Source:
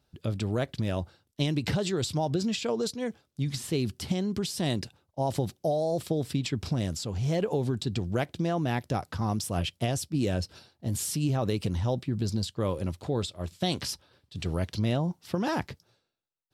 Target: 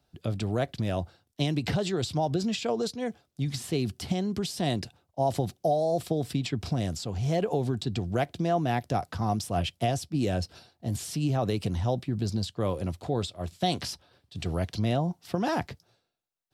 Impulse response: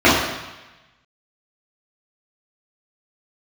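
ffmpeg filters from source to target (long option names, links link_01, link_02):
-filter_complex "[0:a]acrossover=split=110|700|5500[link_01][link_02][link_03][link_04];[link_04]alimiter=level_in=8.5dB:limit=-24dB:level=0:latency=1:release=235,volume=-8.5dB[link_05];[link_01][link_02][link_03][link_05]amix=inputs=4:normalize=0,equalizer=frequency=710:width=7.8:gain=8"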